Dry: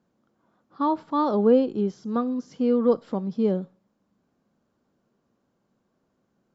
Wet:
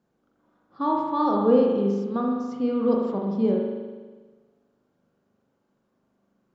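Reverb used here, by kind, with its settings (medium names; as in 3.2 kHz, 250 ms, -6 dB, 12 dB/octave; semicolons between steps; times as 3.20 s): spring tank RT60 1.4 s, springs 40 ms, chirp 40 ms, DRR -1 dB; trim -2.5 dB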